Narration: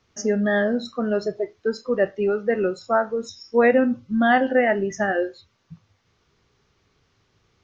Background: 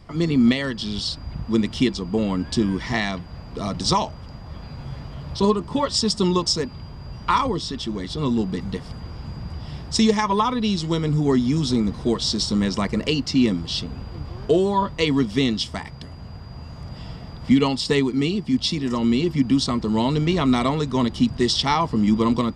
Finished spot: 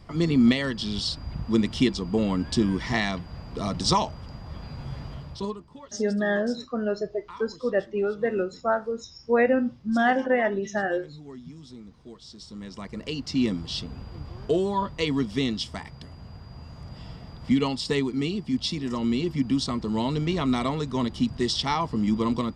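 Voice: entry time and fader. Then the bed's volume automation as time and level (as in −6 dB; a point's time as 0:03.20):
5.75 s, −4.0 dB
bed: 0:05.13 −2 dB
0:05.79 −23.5 dB
0:12.27 −23.5 dB
0:13.41 −5.5 dB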